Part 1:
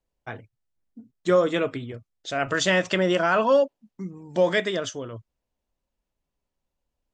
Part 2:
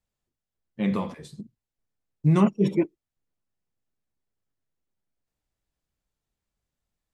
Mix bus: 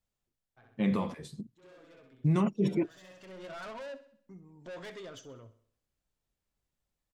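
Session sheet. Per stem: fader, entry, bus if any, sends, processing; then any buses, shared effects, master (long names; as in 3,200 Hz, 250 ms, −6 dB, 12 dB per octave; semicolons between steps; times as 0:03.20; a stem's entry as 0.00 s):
−14.5 dB, 0.30 s, no send, echo send −14.5 dB, high-shelf EQ 4,100 Hz −3.5 dB; comb filter 7.4 ms, depth 33%; soft clipping −26 dBFS, distortion −5 dB; automatic ducking −20 dB, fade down 1.15 s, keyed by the second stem
−2.0 dB, 0.00 s, no send, no echo send, no processing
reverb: not used
echo: repeating echo 64 ms, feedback 48%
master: brickwall limiter −19.5 dBFS, peak gain reduction 8 dB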